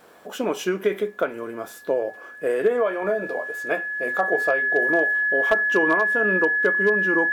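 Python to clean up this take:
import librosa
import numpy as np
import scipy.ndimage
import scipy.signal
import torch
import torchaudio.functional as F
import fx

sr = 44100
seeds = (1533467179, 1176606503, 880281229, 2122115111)

y = fx.fix_declip(x, sr, threshold_db=-10.5)
y = fx.notch(y, sr, hz=1700.0, q=30.0)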